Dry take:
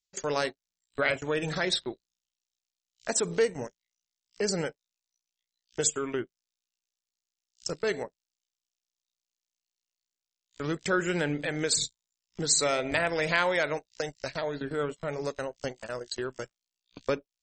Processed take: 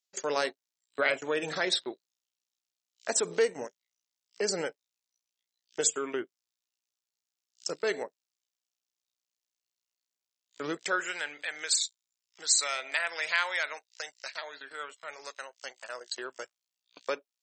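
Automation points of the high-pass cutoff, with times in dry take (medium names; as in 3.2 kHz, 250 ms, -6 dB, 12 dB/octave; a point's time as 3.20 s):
10.69 s 310 Hz
11.18 s 1.2 kHz
15.61 s 1.2 kHz
16.20 s 580 Hz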